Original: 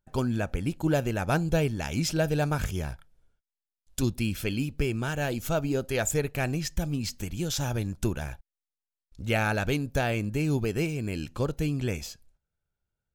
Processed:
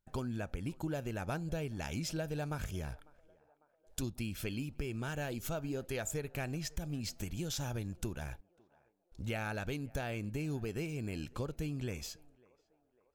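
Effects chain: compressor 4:1, threshold -32 dBFS, peak gain reduction 11 dB; on a send: narrowing echo 0.549 s, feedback 63%, band-pass 750 Hz, level -22.5 dB; on the sum: gain -3.5 dB

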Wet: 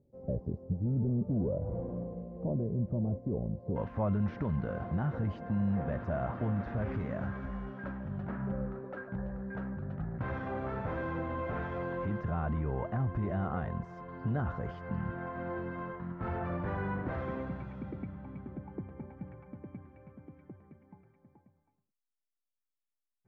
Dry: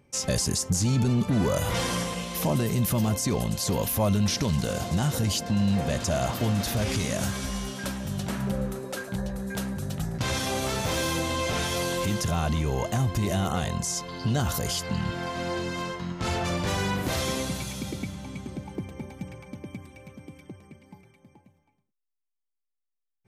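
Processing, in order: Chebyshev low-pass 570 Hz, order 3, from 3.75 s 1600 Hz; gain -6.5 dB

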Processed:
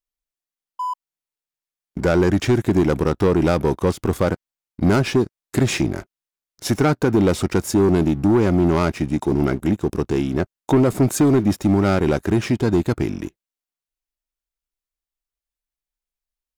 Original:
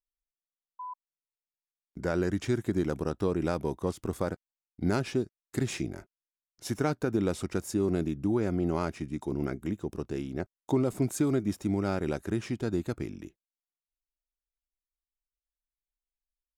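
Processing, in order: dynamic EQ 8800 Hz, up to -4 dB, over -58 dBFS, Q 0.95; sample leveller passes 2; gain +7 dB

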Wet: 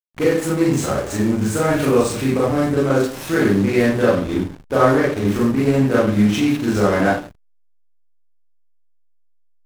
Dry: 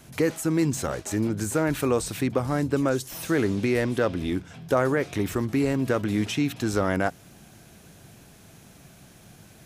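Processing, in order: thin delay 0.29 s, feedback 74%, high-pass 4600 Hz, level -17 dB; Schroeder reverb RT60 0.53 s, combs from 30 ms, DRR -8 dB; backlash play -22.5 dBFS

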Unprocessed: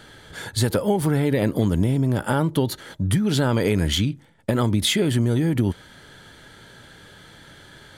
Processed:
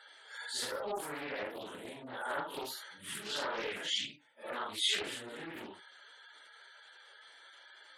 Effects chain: phase scrambler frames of 0.2 s; HPF 800 Hz 12 dB/oct; spectral gate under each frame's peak -20 dB strong; Doppler distortion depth 0.32 ms; gain -7.5 dB

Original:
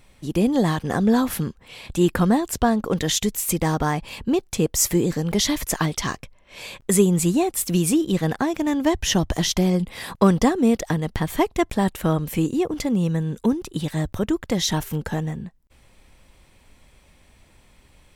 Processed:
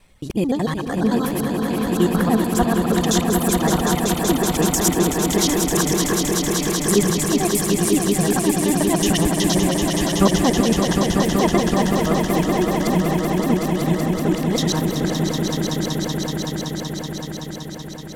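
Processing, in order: local time reversal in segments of 74 ms; reverb removal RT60 1.8 s; swelling echo 0.189 s, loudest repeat 5, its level -6 dB

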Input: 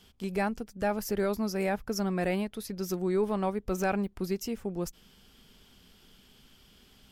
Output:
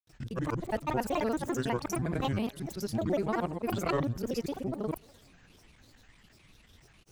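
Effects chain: local time reversal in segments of 58 ms; bell 79 Hz +9 dB 0.55 oct; thinning echo 0.253 s, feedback 69%, high-pass 230 Hz, level -24 dB; grains, grains 20/s, pitch spread up and down by 12 st

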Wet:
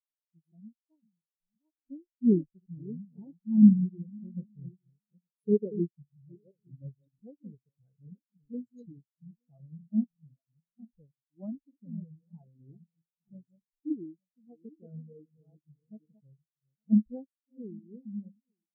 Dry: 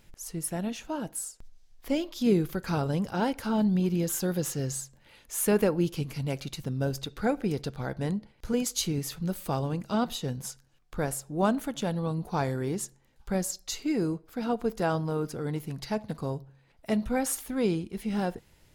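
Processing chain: regenerating reverse delay 0.434 s, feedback 45%, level -4.5 dB; rotary speaker horn 1.1 Hz; spectral expander 4:1; gain +5 dB

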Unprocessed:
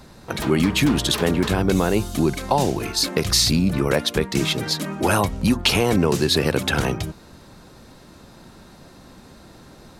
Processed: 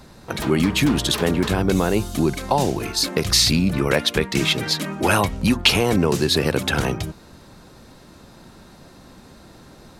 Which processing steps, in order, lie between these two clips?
3.31–5.72 dynamic EQ 2400 Hz, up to +5 dB, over -35 dBFS, Q 0.94

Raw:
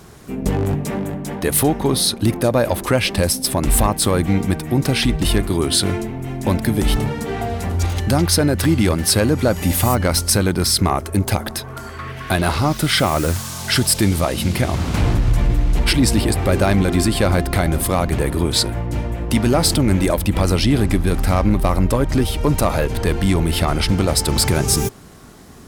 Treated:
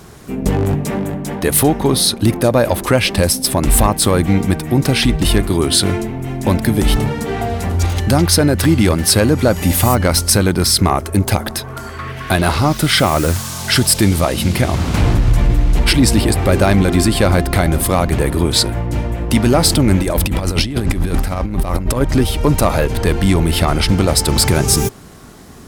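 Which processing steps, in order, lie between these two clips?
20.01–22.01 negative-ratio compressor -19 dBFS, ratio -0.5; gain +3.5 dB

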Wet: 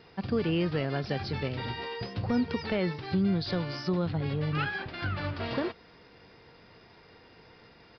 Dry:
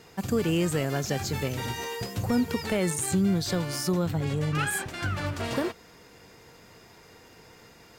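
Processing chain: downsampling 11025 Hz; gain -2.5 dB

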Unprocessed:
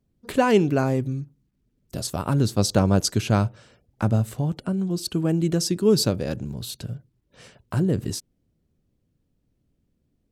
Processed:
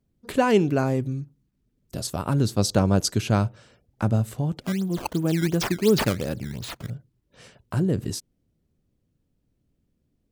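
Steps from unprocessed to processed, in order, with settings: 4.61–6.9 decimation with a swept rate 14×, swing 160% 2.8 Hz; gain -1 dB

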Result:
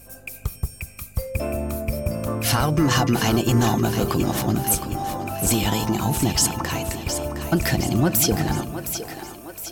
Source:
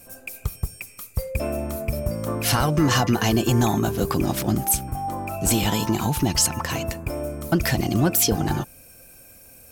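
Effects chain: buzz 50 Hz, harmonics 5, -51 dBFS -5 dB/oct; on a send: split-band echo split 310 Hz, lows 0.19 s, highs 0.714 s, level -9 dB

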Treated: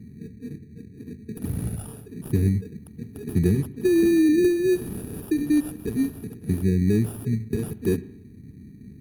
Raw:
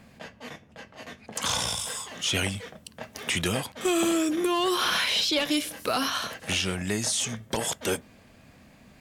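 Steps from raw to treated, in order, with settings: one-sided fold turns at -23 dBFS; brick-wall FIR band-stop 460–9600 Hz; vibrato 3 Hz 16 cents; HPF 82 Hz; high shelf 9000 Hz -9 dB; in parallel at -3.5 dB: sample-and-hold 21×; on the sum: low shelf 200 Hz +9.5 dB; on a send at -18.5 dB: reverb RT60 0.65 s, pre-delay 76 ms; on the sum: gain +2.5 dB

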